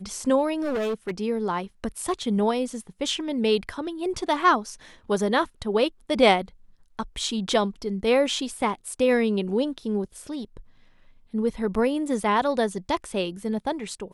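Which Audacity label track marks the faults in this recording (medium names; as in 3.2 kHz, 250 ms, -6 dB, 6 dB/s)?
0.590000	1.110000	clipped -23.5 dBFS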